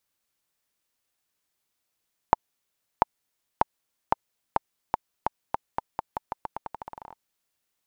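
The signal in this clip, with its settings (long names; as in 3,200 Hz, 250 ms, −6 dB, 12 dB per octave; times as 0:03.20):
bouncing ball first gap 0.69 s, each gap 0.86, 892 Hz, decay 18 ms −2 dBFS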